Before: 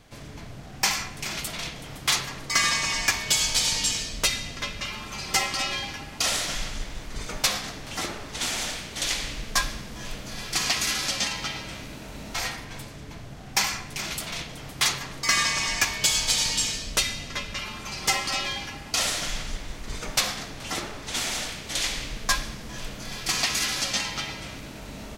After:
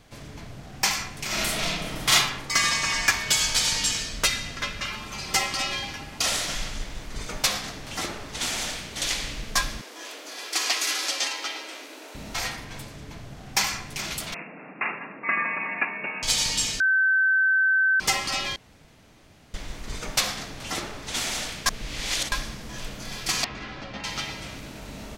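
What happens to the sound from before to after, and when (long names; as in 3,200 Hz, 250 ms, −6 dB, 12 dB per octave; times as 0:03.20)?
0:01.26–0:02.13: thrown reverb, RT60 0.84 s, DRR −6 dB
0:02.83–0:04.96: parametric band 1,500 Hz +5.5 dB
0:09.81–0:12.15: Butterworth high-pass 290 Hz 48 dB per octave
0:14.34–0:16.23: linear-phase brick-wall band-pass 160–2,800 Hz
0:16.80–0:18.00: beep over 1,540 Hz −17.5 dBFS
0:18.56–0:19.54: fill with room tone
0:21.66–0:22.32: reverse
0:23.44–0:24.04: head-to-tape spacing loss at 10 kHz 44 dB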